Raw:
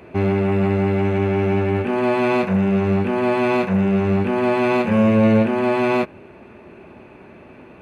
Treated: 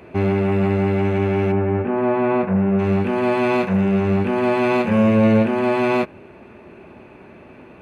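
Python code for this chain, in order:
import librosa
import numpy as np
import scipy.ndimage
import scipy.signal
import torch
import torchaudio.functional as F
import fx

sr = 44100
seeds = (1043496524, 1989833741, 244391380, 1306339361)

y = fx.lowpass(x, sr, hz=1600.0, slope=12, at=(1.51, 2.78), fade=0.02)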